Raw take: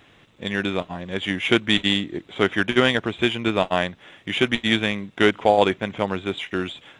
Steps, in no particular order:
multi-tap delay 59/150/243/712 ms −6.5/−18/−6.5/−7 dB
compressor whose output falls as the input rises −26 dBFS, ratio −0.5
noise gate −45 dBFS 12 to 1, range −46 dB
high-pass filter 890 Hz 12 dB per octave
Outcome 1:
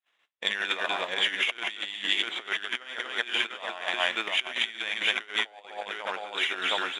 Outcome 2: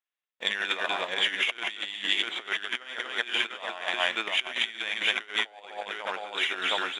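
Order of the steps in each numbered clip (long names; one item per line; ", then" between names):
multi-tap delay, then compressor whose output falls as the input rises, then high-pass filter, then noise gate
noise gate, then multi-tap delay, then compressor whose output falls as the input rises, then high-pass filter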